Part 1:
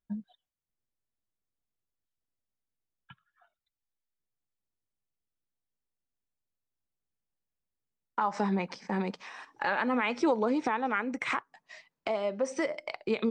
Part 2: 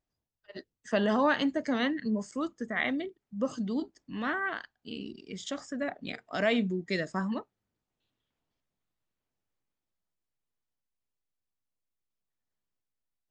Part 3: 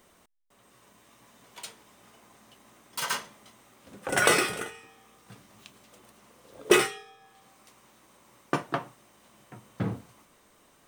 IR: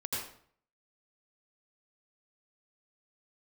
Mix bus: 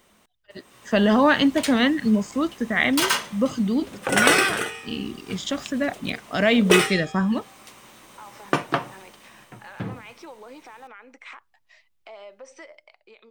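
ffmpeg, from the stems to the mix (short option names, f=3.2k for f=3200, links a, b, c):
-filter_complex "[0:a]highpass=480,alimiter=level_in=2.5dB:limit=-24dB:level=0:latency=1,volume=-2.5dB,volume=-18dB[a];[1:a]lowshelf=f=150:g=12,volume=-3dB[b];[2:a]acompressor=threshold=-34dB:ratio=1.5,afade=t=out:st=8.94:d=0.67:silence=0.375837[c];[a][b][c]amix=inputs=3:normalize=0,equalizer=f=2.9k:t=o:w=1.4:g=4,dynaudnorm=f=140:g=11:m=10dB"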